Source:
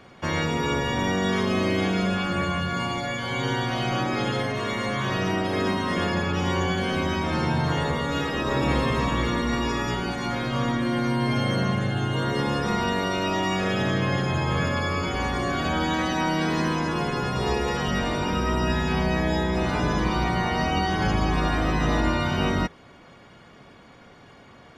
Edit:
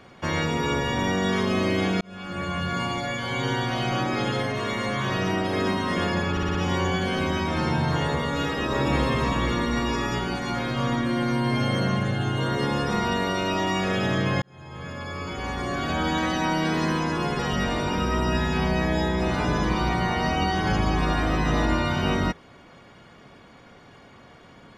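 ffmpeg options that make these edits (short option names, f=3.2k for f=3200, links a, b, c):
-filter_complex "[0:a]asplit=8[a][b][c][d][e][f][g][h];[a]atrim=end=2.01,asetpts=PTS-STARTPTS,afade=t=out:st=2.006:d=0.004:c=hsin[i];[b]atrim=start=2.01:end=6.372,asetpts=PTS-STARTPTS,afade=t=in:d=0.69[j];[c]atrim=start=6.308:end=6.372[k];[d]atrim=start=6.308:end=6.372[l];[e]atrim=start=6.308:end=6.372[m];[f]atrim=start=6.308:end=14.18,asetpts=PTS-STARTPTS,afade=t=out:st=7.868:d=0.004:c=hsin[n];[g]atrim=start=14.18:end=17.152,asetpts=PTS-STARTPTS,afade=t=in:d=1.69[o];[h]atrim=start=17.738[p];[i][j]concat=n=2:v=0:a=1[q];[q][k]acrossfade=d=0.004:c1=hsin:c2=hsin[r];[r][l]acrossfade=d=0.004:c1=hsin:c2=hsin[s];[s][m]acrossfade=d=0.004:c1=hsin:c2=hsin[t];[n][o]concat=n=2:v=0:a=1[u];[t][u]acrossfade=d=0.004:c1=hsin:c2=hsin[v];[v][p]acrossfade=d=0.004:c1=hsin:c2=hsin"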